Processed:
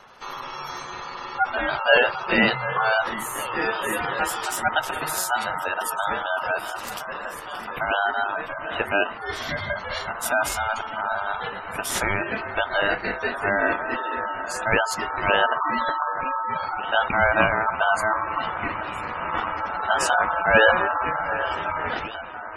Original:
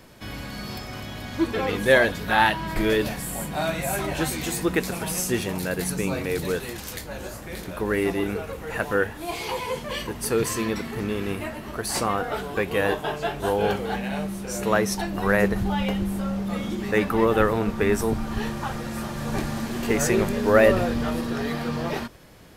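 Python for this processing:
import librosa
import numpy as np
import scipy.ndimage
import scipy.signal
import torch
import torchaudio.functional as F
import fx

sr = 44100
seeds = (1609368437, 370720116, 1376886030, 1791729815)

y = fx.echo_alternate(x, sr, ms=748, hz=930.0, feedback_pct=80, wet_db=-13)
y = y * np.sin(2.0 * np.pi * 1100.0 * np.arange(len(y)) / sr)
y = fx.spec_gate(y, sr, threshold_db=-20, keep='strong')
y = y * librosa.db_to_amplitude(3.5)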